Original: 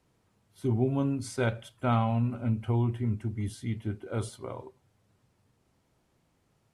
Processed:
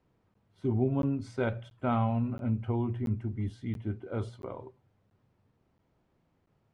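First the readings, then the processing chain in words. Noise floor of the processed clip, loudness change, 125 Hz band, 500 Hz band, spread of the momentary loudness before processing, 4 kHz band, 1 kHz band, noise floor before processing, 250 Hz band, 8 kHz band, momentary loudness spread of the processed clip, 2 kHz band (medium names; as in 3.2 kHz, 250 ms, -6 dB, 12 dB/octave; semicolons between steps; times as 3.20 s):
-73 dBFS, -2.0 dB, -2.5 dB, -1.0 dB, 8 LU, no reading, -2.0 dB, -72 dBFS, -0.5 dB, under -15 dB, 9 LU, -3.5 dB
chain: tape spacing loss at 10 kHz 22 dB; hum notches 60/120 Hz; crackling interface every 0.68 s, samples 512, zero, from 0.34 s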